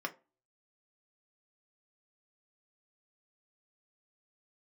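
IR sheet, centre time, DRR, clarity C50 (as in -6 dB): 6 ms, 2.0 dB, 19.0 dB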